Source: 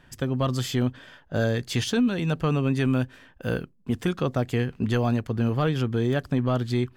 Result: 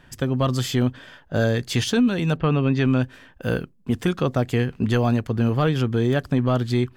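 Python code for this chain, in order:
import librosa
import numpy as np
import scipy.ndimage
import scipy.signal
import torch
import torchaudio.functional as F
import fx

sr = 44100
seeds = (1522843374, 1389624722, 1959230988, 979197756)

y = fx.lowpass(x, sr, hz=fx.line((2.36, 3300.0), (3.02, 7600.0)), slope=24, at=(2.36, 3.02), fade=0.02)
y = y * 10.0 ** (3.5 / 20.0)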